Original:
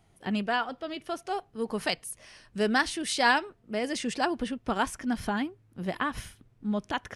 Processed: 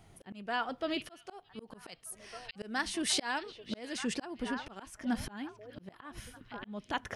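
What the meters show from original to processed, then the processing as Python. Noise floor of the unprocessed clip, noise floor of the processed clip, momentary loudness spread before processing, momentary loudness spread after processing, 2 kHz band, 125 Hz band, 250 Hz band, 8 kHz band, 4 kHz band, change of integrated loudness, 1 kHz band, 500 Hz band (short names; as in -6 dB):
-63 dBFS, -62 dBFS, 12 LU, 18 LU, -9.0 dB, -9.5 dB, -7.0 dB, -1.5 dB, -4.0 dB, -7.0 dB, -10.0 dB, -10.0 dB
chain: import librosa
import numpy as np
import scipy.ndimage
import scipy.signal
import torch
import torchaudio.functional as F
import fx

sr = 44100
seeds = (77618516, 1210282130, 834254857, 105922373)

y = fx.echo_stepped(x, sr, ms=617, hz=3200.0, octaves=-1.4, feedback_pct=70, wet_db=-10.5)
y = fx.auto_swell(y, sr, attack_ms=797.0)
y = y * librosa.db_to_amplitude(5.0)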